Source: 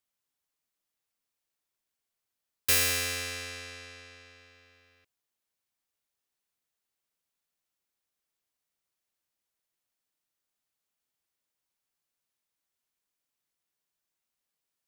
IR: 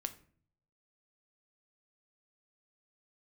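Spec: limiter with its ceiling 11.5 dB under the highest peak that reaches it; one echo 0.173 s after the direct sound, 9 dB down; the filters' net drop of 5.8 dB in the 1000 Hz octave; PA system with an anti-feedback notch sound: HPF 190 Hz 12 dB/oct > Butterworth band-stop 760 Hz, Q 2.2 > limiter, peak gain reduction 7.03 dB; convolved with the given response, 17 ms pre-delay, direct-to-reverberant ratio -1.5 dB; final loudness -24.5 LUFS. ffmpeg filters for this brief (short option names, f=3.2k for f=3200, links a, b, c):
-filter_complex "[0:a]equalizer=f=1k:t=o:g=-6.5,alimiter=limit=-24dB:level=0:latency=1,aecho=1:1:173:0.355,asplit=2[a][b];[1:a]atrim=start_sample=2205,adelay=17[c];[b][c]afir=irnorm=-1:irlink=0,volume=2.5dB[d];[a][d]amix=inputs=2:normalize=0,highpass=190,asuperstop=centerf=760:order=8:qfactor=2.2,volume=10.5dB,alimiter=limit=-15dB:level=0:latency=1"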